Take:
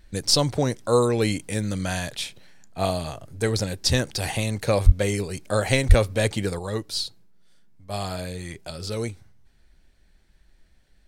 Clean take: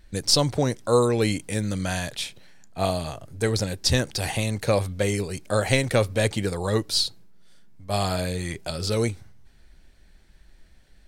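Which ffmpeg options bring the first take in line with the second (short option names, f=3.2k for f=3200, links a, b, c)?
-filter_complex "[0:a]asplit=3[a][b][c];[a]afade=t=out:st=4.85:d=0.02[d];[b]highpass=f=140:w=0.5412,highpass=f=140:w=1.3066,afade=t=in:st=4.85:d=0.02,afade=t=out:st=4.97:d=0.02[e];[c]afade=t=in:st=4.97:d=0.02[f];[d][e][f]amix=inputs=3:normalize=0,asplit=3[g][h][i];[g]afade=t=out:st=5.88:d=0.02[j];[h]highpass=f=140:w=0.5412,highpass=f=140:w=1.3066,afade=t=in:st=5.88:d=0.02,afade=t=out:st=6:d=0.02[k];[i]afade=t=in:st=6:d=0.02[l];[j][k][l]amix=inputs=3:normalize=0,asetnsamples=n=441:p=0,asendcmd='6.59 volume volume 5dB',volume=0dB"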